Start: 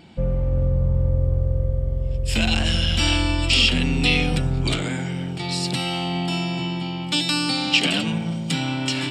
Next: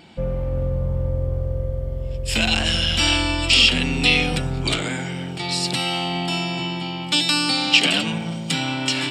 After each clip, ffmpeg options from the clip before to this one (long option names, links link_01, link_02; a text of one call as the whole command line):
ffmpeg -i in.wav -af "lowshelf=frequency=300:gain=-7.5,volume=3.5dB" out.wav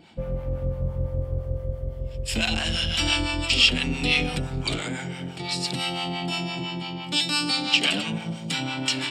ffmpeg -i in.wav -filter_complex "[0:a]acrossover=split=670[link_01][link_02];[link_01]aeval=exprs='val(0)*(1-0.7/2+0.7/2*cos(2*PI*5.9*n/s))':channel_layout=same[link_03];[link_02]aeval=exprs='val(0)*(1-0.7/2-0.7/2*cos(2*PI*5.9*n/s))':channel_layout=same[link_04];[link_03][link_04]amix=inputs=2:normalize=0,volume=-1.5dB" out.wav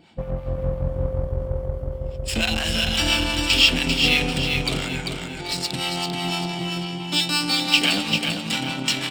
ffmpeg -i in.wav -filter_complex "[0:a]asplit=2[link_01][link_02];[link_02]acrusher=bits=3:mix=0:aa=0.5,volume=-6dB[link_03];[link_01][link_03]amix=inputs=2:normalize=0,aecho=1:1:394|788|1182|1576|1970:0.562|0.219|0.0855|0.0334|0.013,volume=-1.5dB" out.wav